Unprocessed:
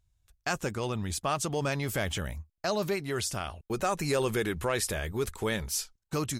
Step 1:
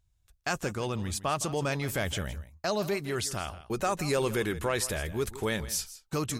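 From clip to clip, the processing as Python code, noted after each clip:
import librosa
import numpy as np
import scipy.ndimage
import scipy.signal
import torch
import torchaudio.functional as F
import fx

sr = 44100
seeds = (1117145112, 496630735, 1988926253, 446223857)

y = x + 10.0 ** (-15.5 / 20.0) * np.pad(x, (int(163 * sr / 1000.0), 0))[:len(x)]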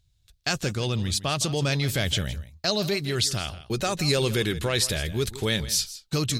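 y = fx.graphic_eq_10(x, sr, hz=(125, 1000, 4000), db=(6, -6, 11))
y = y * librosa.db_to_amplitude(3.0)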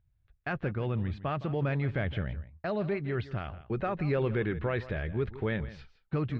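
y = scipy.signal.sosfilt(scipy.signal.butter(4, 2000.0, 'lowpass', fs=sr, output='sos'), x)
y = y * librosa.db_to_amplitude(-4.0)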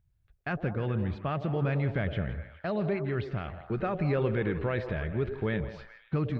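y = fx.peak_eq(x, sr, hz=180.0, db=3.0, octaves=0.77)
y = fx.echo_stepped(y, sr, ms=104, hz=450.0, octaves=0.7, feedback_pct=70, wet_db=-6.0)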